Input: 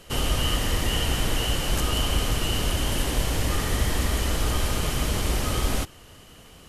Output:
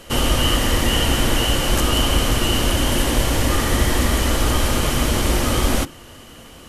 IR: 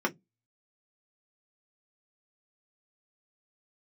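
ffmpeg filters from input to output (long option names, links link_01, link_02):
-filter_complex "[0:a]asplit=2[link_01][link_02];[1:a]atrim=start_sample=2205,lowshelf=frequency=160:gain=8.5[link_03];[link_02][link_03]afir=irnorm=-1:irlink=0,volume=-19dB[link_04];[link_01][link_04]amix=inputs=2:normalize=0,volume=6dB"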